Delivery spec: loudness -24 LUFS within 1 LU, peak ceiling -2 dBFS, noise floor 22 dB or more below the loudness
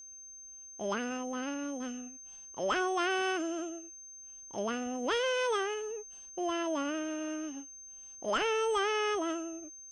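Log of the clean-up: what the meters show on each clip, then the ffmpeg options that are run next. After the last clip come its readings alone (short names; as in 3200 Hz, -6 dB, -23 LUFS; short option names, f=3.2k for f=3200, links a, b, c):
steady tone 6300 Hz; tone level -47 dBFS; loudness -33.5 LUFS; peak -21.0 dBFS; loudness target -24.0 LUFS
-> -af "bandreject=f=6.3k:w=30"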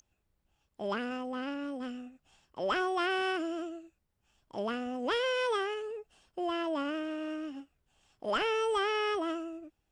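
steady tone none; loudness -33.5 LUFS; peak -21.5 dBFS; loudness target -24.0 LUFS
-> -af "volume=9.5dB"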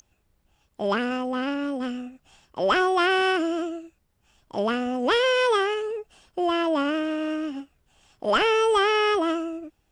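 loudness -24.0 LUFS; peak -12.0 dBFS; noise floor -70 dBFS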